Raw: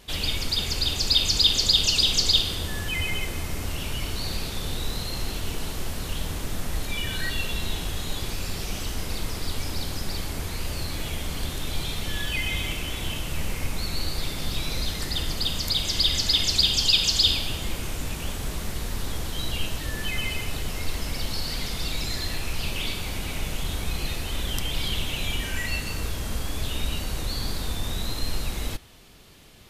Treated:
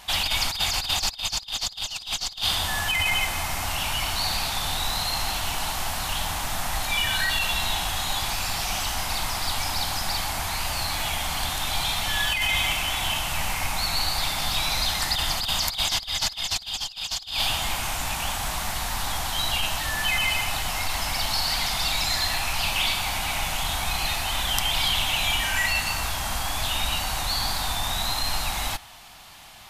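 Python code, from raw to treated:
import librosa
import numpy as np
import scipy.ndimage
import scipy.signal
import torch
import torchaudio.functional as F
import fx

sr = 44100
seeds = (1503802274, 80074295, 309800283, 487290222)

y = fx.low_shelf_res(x, sr, hz=590.0, db=-9.5, q=3.0)
y = fx.over_compress(y, sr, threshold_db=-29.0, ratio=-0.5)
y = F.gain(torch.from_numpy(y), 5.0).numpy()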